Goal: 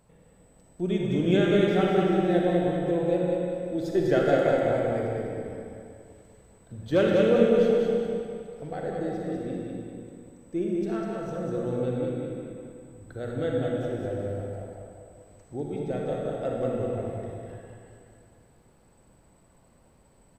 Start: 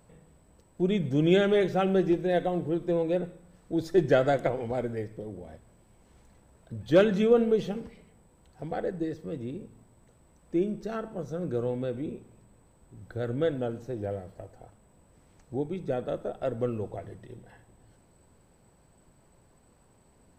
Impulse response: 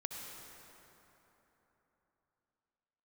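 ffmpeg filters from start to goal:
-filter_complex "[0:a]aecho=1:1:198|396|594|792|990:0.631|0.246|0.096|0.0374|0.0146[a];[1:a]atrim=start_sample=2205,asetrate=70560,aresample=44100[b];[a][b]afir=irnorm=-1:irlink=0,volume=4.5dB"

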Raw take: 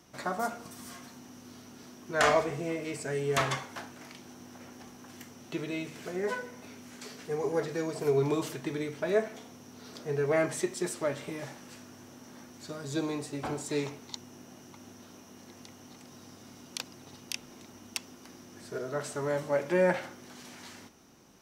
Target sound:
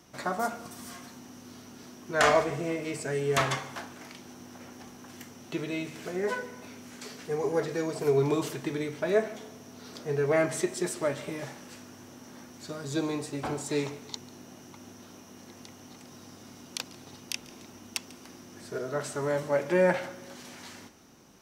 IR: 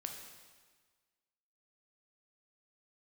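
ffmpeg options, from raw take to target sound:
-filter_complex "[0:a]asplit=2[a][b];[1:a]atrim=start_sample=2205,adelay=144[c];[b][c]afir=irnorm=-1:irlink=0,volume=-17dB[d];[a][d]amix=inputs=2:normalize=0,volume=2dB"

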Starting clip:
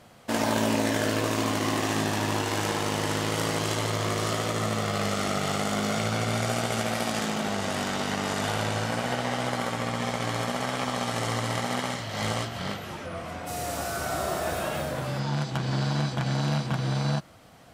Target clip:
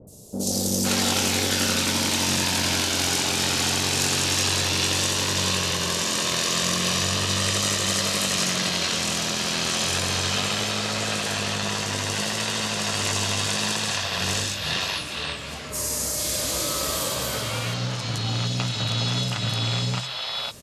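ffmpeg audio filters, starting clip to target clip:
-filter_complex "[0:a]acompressor=mode=upward:threshold=-36dB:ratio=2.5,bass=f=250:g=1,treble=f=4k:g=12,bandreject=f=50:t=h:w=6,bandreject=f=100:t=h:w=6,bandreject=f=150:t=h:w=6,bandreject=f=200:t=h:w=6,adynamicequalizer=threshold=0.00708:dfrequency=4400:dqfactor=0.77:tfrequency=4400:tqfactor=0.77:attack=5:release=100:ratio=0.375:range=3.5:mode=boostabove:tftype=bell,acrossover=split=680|5800[a][b][c];[c]adelay=60[d];[b]adelay=440[e];[a][e][d]amix=inputs=3:normalize=0,asetrate=37926,aresample=44100"

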